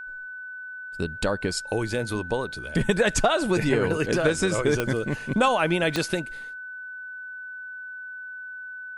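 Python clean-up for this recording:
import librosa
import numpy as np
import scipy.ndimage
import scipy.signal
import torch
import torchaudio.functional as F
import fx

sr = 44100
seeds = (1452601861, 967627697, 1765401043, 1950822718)

y = fx.fix_declick_ar(x, sr, threshold=10.0)
y = fx.notch(y, sr, hz=1500.0, q=30.0)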